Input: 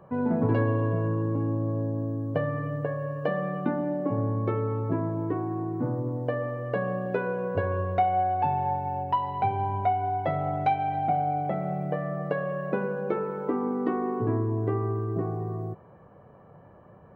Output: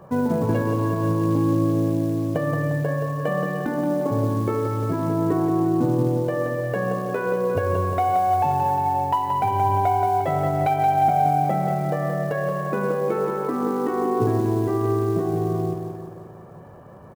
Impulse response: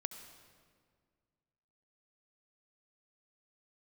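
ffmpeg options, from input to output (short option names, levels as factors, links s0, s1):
-af "alimiter=limit=0.1:level=0:latency=1:release=150,acrusher=bits=7:mode=log:mix=0:aa=0.000001,aecho=1:1:176|352|528|704|880|1056|1232:0.473|0.265|0.148|0.0831|0.0465|0.0261|0.0146,volume=2.11"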